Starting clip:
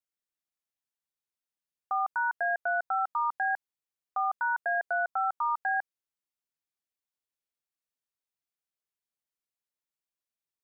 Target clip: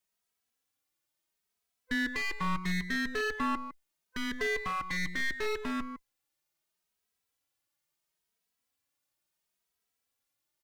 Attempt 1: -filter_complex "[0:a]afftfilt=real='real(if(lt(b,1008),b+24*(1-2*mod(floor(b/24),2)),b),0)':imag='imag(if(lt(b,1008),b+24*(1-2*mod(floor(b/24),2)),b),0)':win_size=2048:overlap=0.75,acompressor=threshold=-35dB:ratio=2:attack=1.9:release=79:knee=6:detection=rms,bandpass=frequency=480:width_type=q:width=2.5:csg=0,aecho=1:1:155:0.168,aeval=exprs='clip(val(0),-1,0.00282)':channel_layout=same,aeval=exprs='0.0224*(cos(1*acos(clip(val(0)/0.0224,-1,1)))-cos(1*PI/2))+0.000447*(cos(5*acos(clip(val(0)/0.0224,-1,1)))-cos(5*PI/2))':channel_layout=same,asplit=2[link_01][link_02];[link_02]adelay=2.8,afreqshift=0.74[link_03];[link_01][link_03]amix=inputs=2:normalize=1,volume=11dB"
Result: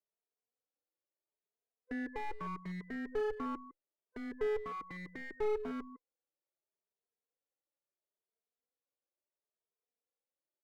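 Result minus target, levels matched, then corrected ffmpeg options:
500 Hz band +8.5 dB
-filter_complex "[0:a]afftfilt=real='real(if(lt(b,1008),b+24*(1-2*mod(floor(b/24),2)),b),0)':imag='imag(if(lt(b,1008),b+24*(1-2*mod(floor(b/24),2)),b),0)':win_size=2048:overlap=0.75,acompressor=threshold=-35dB:ratio=2:attack=1.9:release=79:knee=6:detection=rms,aecho=1:1:155:0.168,aeval=exprs='clip(val(0),-1,0.00282)':channel_layout=same,aeval=exprs='0.0224*(cos(1*acos(clip(val(0)/0.0224,-1,1)))-cos(1*PI/2))+0.000447*(cos(5*acos(clip(val(0)/0.0224,-1,1)))-cos(5*PI/2))':channel_layout=same,asplit=2[link_01][link_02];[link_02]adelay=2.8,afreqshift=0.74[link_03];[link_01][link_03]amix=inputs=2:normalize=1,volume=11dB"

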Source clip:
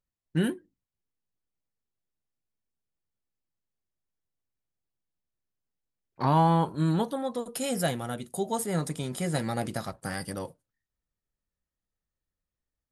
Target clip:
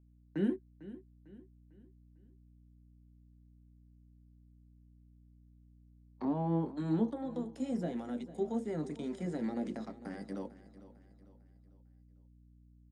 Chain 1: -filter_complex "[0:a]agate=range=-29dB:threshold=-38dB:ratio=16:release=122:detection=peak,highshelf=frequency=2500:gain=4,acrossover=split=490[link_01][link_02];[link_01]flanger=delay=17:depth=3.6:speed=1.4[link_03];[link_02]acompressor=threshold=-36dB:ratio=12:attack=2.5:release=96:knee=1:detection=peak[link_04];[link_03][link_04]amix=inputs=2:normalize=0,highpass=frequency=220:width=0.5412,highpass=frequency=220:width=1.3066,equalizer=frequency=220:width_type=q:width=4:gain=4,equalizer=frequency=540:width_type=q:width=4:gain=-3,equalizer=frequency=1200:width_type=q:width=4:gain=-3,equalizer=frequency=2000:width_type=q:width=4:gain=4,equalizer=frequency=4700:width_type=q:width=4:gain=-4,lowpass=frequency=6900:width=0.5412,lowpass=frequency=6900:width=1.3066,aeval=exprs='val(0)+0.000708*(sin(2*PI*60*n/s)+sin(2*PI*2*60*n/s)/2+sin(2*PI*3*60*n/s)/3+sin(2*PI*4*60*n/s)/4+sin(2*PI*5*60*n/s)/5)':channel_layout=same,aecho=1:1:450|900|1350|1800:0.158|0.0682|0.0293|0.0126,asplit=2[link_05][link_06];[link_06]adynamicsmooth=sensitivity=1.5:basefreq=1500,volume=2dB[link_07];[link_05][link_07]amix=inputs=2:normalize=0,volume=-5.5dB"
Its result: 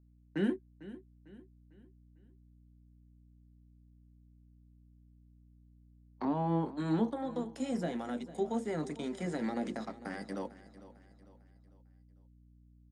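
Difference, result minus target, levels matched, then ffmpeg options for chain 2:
downward compressor: peak gain reduction −7.5 dB
-filter_complex "[0:a]agate=range=-29dB:threshold=-38dB:ratio=16:release=122:detection=peak,highshelf=frequency=2500:gain=4,acrossover=split=490[link_01][link_02];[link_01]flanger=delay=17:depth=3.6:speed=1.4[link_03];[link_02]acompressor=threshold=-44dB:ratio=12:attack=2.5:release=96:knee=1:detection=peak[link_04];[link_03][link_04]amix=inputs=2:normalize=0,highpass=frequency=220:width=0.5412,highpass=frequency=220:width=1.3066,equalizer=frequency=220:width_type=q:width=4:gain=4,equalizer=frequency=540:width_type=q:width=4:gain=-3,equalizer=frequency=1200:width_type=q:width=4:gain=-3,equalizer=frequency=2000:width_type=q:width=4:gain=4,equalizer=frequency=4700:width_type=q:width=4:gain=-4,lowpass=frequency=6900:width=0.5412,lowpass=frequency=6900:width=1.3066,aeval=exprs='val(0)+0.000708*(sin(2*PI*60*n/s)+sin(2*PI*2*60*n/s)/2+sin(2*PI*3*60*n/s)/3+sin(2*PI*4*60*n/s)/4+sin(2*PI*5*60*n/s)/5)':channel_layout=same,aecho=1:1:450|900|1350|1800:0.158|0.0682|0.0293|0.0126,asplit=2[link_05][link_06];[link_06]adynamicsmooth=sensitivity=1.5:basefreq=1500,volume=2dB[link_07];[link_05][link_07]amix=inputs=2:normalize=0,volume=-5.5dB"

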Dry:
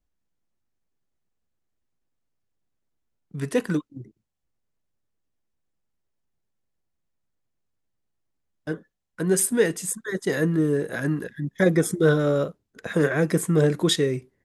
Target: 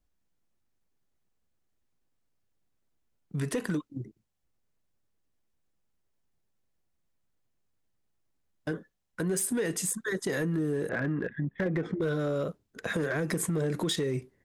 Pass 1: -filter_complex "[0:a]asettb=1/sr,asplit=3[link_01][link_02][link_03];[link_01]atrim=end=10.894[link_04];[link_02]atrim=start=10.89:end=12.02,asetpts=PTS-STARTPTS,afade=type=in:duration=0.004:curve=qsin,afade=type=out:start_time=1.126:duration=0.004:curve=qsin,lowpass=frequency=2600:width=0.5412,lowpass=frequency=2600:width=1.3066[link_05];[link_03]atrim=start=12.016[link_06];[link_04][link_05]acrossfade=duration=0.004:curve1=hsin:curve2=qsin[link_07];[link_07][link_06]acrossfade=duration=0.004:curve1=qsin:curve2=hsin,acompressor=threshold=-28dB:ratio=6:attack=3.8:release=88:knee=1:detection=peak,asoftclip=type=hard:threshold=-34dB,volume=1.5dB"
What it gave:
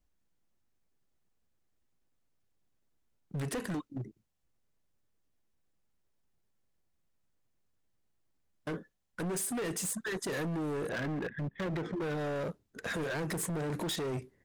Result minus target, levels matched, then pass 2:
hard clipping: distortion +16 dB
-filter_complex "[0:a]asettb=1/sr,asplit=3[link_01][link_02][link_03];[link_01]atrim=end=10.894[link_04];[link_02]atrim=start=10.89:end=12.02,asetpts=PTS-STARTPTS,afade=type=in:duration=0.004:curve=qsin,afade=type=out:start_time=1.126:duration=0.004:curve=qsin,lowpass=frequency=2600:width=0.5412,lowpass=frequency=2600:width=1.3066[link_05];[link_03]atrim=start=12.016[link_06];[link_04][link_05]acrossfade=duration=0.004:curve1=hsin:curve2=qsin[link_07];[link_07][link_06]acrossfade=duration=0.004:curve1=qsin:curve2=hsin,acompressor=threshold=-28dB:ratio=6:attack=3.8:release=88:knee=1:detection=peak,asoftclip=type=hard:threshold=-24.5dB,volume=1.5dB"

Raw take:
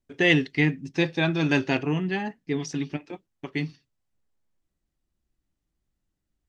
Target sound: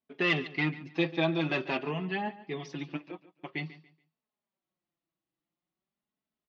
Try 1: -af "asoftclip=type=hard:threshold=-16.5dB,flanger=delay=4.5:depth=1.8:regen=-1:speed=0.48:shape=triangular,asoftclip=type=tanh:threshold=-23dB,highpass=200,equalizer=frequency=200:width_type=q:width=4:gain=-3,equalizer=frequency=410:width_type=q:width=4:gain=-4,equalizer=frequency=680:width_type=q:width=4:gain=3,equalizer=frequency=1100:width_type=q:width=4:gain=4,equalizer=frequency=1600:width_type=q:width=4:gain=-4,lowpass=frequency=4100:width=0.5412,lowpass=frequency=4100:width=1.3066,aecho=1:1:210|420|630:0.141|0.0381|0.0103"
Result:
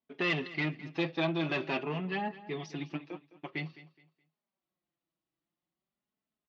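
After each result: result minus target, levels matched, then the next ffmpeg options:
soft clipping: distortion +17 dB; echo 68 ms late
-af "asoftclip=type=hard:threshold=-16.5dB,flanger=delay=4.5:depth=1.8:regen=-1:speed=0.48:shape=triangular,asoftclip=type=tanh:threshold=-12dB,highpass=200,equalizer=frequency=200:width_type=q:width=4:gain=-3,equalizer=frequency=410:width_type=q:width=4:gain=-4,equalizer=frequency=680:width_type=q:width=4:gain=3,equalizer=frequency=1100:width_type=q:width=4:gain=4,equalizer=frequency=1600:width_type=q:width=4:gain=-4,lowpass=frequency=4100:width=0.5412,lowpass=frequency=4100:width=1.3066,aecho=1:1:210|420|630:0.141|0.0381|0.0103"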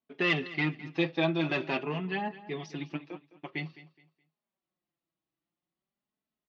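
echo 68 ms late
-af "asoftclip=type=hard:threshold=-16.5dB,flanger=delay=4.5:depth=1.8:regen=-1:speed=0.48:shape=triangular,asoftclip=type=tanh:threshold=-12dB,highpass=200,equalizer=frequency=200:width_type=q:width=4:gain=-3,equalizer=frequency=410:width_type=q:width=4:gain=-4,equalizer=frequency=680:width_type=q:width=4:gain=3,equalizer=frequency=1100:width_type=q:width=4:gain=4,equalizer=frequency=1600:width_type=q:width=4:gain=-4,lowpass=frequency=4100:width=0.5412,lowpass=frequency=4100:width=1.3066,aecho=1:1:142|284|426:0.141|0.0381|0.0103"

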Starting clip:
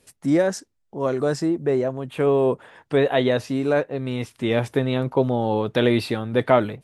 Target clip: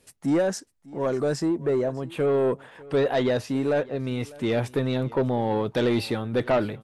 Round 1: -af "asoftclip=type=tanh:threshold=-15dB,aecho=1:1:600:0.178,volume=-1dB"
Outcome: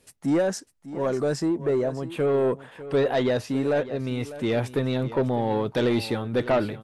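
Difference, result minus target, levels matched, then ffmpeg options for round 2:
echo-to-direct +6.5 dB
-af "asoftclip=type=tanh:threshold=-15dB,aecho=1:1:600:0.0841,volume=-1dB"

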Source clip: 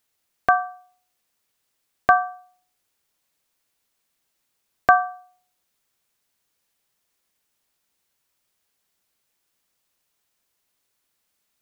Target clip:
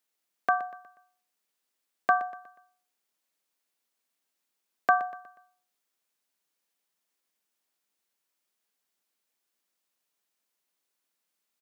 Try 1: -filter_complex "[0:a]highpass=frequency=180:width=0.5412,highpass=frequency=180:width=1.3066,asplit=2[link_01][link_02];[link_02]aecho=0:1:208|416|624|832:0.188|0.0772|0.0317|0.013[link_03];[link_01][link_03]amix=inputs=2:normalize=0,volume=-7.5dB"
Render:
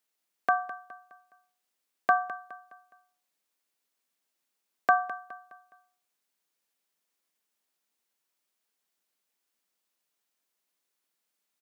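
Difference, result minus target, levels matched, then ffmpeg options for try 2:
echo 87 ms late
-filter_complex "[0:a]highpass=frequency=180:width=0.5412,highpass=frequency=180:width=1.3066,asplit=2[link_01][link_02];[link_02]aecho=0:1:121|242|363|484:0.188|0.0772|0.0317|0.013[link_03];[link_01][link_03]amix=inputs=2:normalize=0,volume=-7.5dB"

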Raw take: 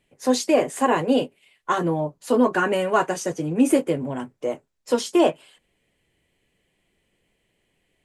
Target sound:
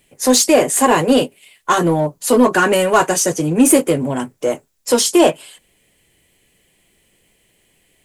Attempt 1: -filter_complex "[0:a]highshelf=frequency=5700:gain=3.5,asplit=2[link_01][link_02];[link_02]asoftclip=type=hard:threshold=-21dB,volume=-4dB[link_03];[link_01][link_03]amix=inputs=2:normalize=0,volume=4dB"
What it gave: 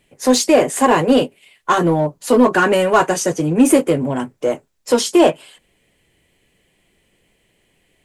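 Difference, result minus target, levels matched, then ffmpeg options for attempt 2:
8,000 Hz band −5.5 dB
-filter_complex "[0:a]highshelf=frequency=5700:gain=14.5,asplit=2[link_01][link_02];[link_02]asoftclip=type=hard:threshold=-21dB,volume=-4dB[link_03];[link_01][link_03]amix=inputs=2:normalize=0,volume=4dB"

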